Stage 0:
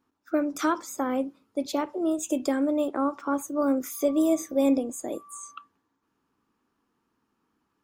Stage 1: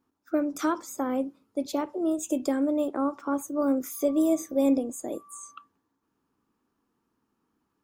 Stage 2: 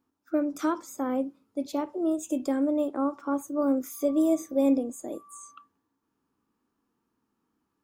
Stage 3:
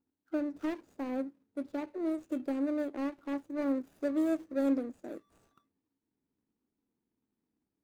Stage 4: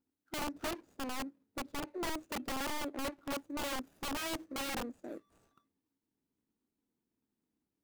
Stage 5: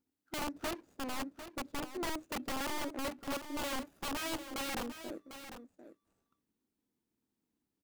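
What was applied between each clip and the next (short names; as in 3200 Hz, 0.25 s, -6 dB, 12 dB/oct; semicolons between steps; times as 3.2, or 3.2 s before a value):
bell 2400 Hz -4.5 dB 2.8 oct
harmonic-percussive split percussive -5 dB
median filter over 41 samples; gain -5.5 dB
wrapped overs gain 30.5 dB; gain -2 dB
echo 0.749 s -11 dB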